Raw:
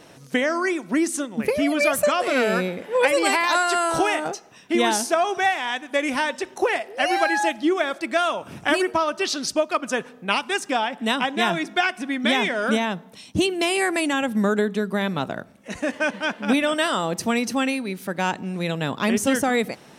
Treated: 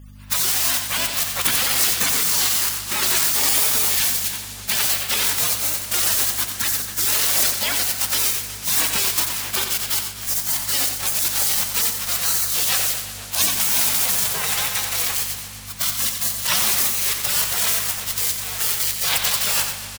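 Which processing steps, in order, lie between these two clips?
zero-crossing glitches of -20 dBFS; harmony voices +4 st -17 dB, +7 st -1 dB; in parallel at -1.5 dB: level held to a coarse grid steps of 24 dB; on the sum: spectral gate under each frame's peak -25 dB weak; hum 50 Hz, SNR 19 dB; on a send: delay 89 ms -7.5 dB; on the sum: modulated delay 123 ms, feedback 80%, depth 124 cents, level -13 dB; trim +8 dB

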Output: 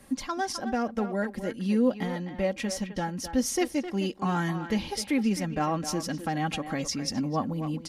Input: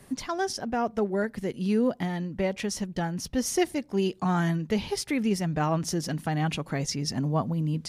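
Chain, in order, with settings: comb 3.7 ms, depth 53%; speakerphone echo 260 ms, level -9 dB; trim -1.5 dB

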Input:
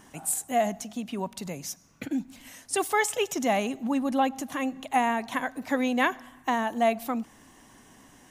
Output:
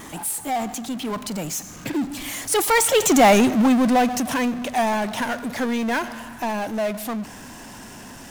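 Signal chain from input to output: Doppler pass-by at 3.32 s, 27 m/s, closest 5.6 m; power-law waveshaper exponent 0.5; trim +8 dB

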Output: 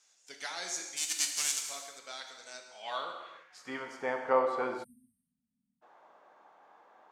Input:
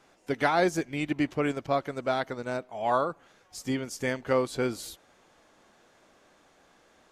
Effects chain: 0.96–1.68 s: formants flattened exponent 0.3; band-pass sweep 6.5 kHz -> 910 Hz, 2.46–3.98 s; gated-style reverb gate 420 ms falling, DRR 3 dB; 4.83–5.82 s: spectral selection erased 270–8200 Hz; trim +6 dB

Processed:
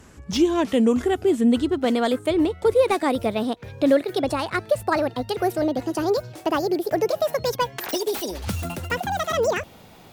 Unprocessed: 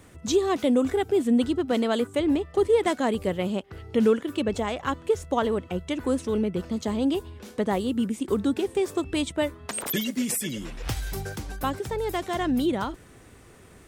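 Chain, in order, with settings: gliding tape speed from 83% -> 191%; slew-rate limiter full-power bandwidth 230 Hz; trim +3 dB

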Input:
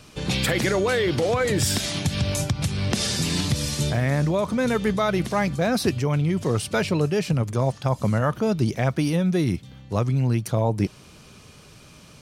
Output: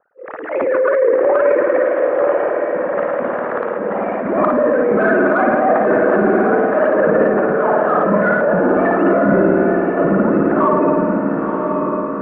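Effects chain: formants replaced by sine waves; Bessel high-pass 190 Hz, order 2; spring tank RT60 2.1 s, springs 54 ms, chirp 80 ms, DRR 2.5 dB; gate -40 dBFS, range -10 dB; steep low-pass 1.4 kHz 36 dB/octave; compression 4:1, threshold -19 dBFS, peak gain reduction 8.5 dB; formant shift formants +3 st; transient shaper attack -10 dB, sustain +8 dB; level-controlled noise filter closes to 1.1 kHz, open at -22 dBFS; on a send: echo that smears into a reverb 977 ms, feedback 47%, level -4 dB; on the sum: trim +9 dB

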